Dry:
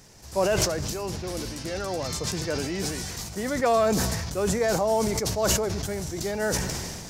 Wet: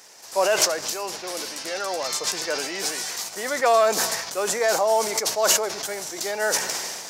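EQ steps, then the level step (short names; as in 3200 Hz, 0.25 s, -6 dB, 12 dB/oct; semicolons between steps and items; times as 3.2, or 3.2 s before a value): HPF 600 Hz 12 dB/oct; +6.0 dB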